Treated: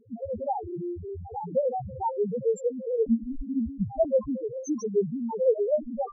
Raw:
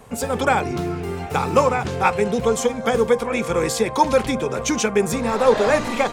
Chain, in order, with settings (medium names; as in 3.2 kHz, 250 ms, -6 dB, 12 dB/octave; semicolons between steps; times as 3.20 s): loudest bins only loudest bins 1; 3.06–4.05 s: frequency shift -250 Hz